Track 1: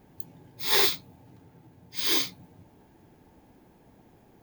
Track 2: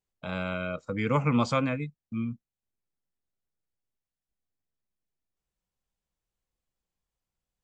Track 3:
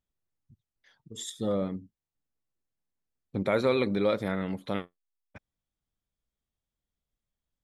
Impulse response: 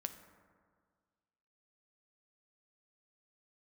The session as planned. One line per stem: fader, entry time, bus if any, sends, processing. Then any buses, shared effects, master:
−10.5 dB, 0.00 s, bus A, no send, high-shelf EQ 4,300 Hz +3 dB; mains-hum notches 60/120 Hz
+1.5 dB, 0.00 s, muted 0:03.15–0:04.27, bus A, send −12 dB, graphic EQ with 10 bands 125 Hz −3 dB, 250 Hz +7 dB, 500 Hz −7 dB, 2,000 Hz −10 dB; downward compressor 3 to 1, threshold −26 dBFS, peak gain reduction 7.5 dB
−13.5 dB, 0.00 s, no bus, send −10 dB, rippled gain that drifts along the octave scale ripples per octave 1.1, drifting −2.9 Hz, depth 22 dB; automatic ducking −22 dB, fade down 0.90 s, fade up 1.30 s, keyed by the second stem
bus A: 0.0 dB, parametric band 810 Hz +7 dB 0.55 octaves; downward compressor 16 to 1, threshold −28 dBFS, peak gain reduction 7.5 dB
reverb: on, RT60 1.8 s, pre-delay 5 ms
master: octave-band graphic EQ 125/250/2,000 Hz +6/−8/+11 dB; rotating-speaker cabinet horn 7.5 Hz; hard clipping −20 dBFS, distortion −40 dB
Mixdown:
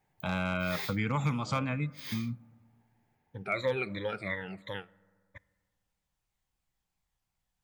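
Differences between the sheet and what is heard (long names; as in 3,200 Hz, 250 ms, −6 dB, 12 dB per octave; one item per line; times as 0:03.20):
stem 1 −10.5 dB → −20.5 dB
master: missing rotating-speaker cabinet horn 7.5 Hz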